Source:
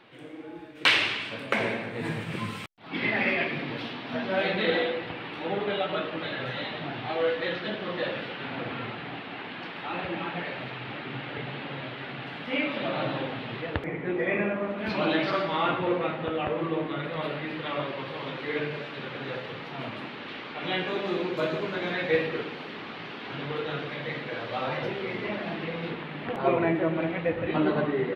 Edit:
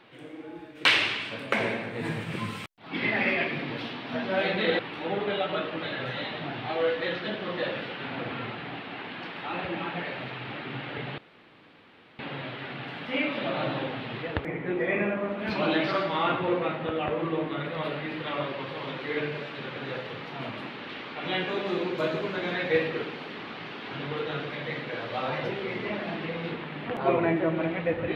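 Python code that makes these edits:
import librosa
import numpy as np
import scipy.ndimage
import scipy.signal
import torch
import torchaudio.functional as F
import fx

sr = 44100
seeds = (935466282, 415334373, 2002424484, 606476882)

y = fx.edit(x, sr, fx.cut(start_s=4.79, length_s=0.4),
    fx.insert_room_tone(at_s=11.58, length_s=1.01), tone=tone)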